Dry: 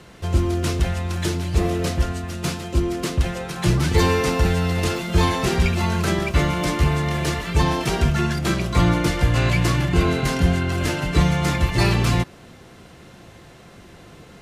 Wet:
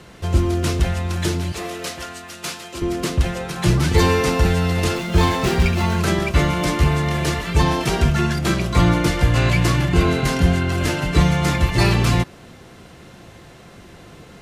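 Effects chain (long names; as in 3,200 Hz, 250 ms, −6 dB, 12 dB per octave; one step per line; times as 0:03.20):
0:01.52–0:02.82: high-pass filter 1,000 Hz 6 dB per octave
0:04.97–0:05.98: windowed peak hold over 3 samples
level +2 dB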